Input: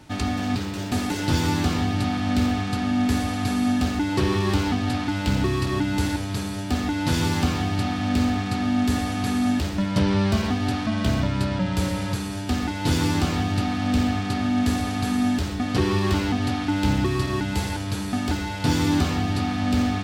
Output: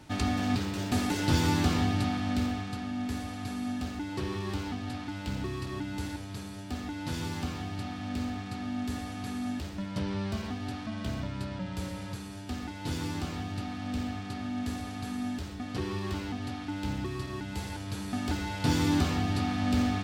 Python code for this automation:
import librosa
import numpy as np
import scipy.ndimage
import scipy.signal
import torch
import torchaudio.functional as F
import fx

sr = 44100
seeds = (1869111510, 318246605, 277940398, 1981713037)

y = fx.gain(x, sr, db=fx.line((1.86, -3.5), (2.91, -12.0), (17.4, -12.0), (18.54, -5.0)))